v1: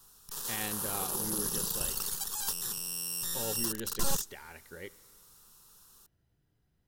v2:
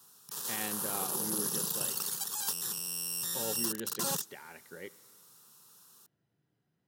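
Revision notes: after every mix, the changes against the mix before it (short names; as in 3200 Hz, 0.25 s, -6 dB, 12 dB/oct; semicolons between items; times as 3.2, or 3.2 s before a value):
speech: add high shelf 4800 Hz -8 dB; master: add HPF 130 Hz 24 dB/oct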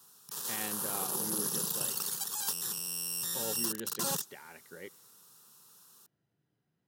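speech: send -8.5 dB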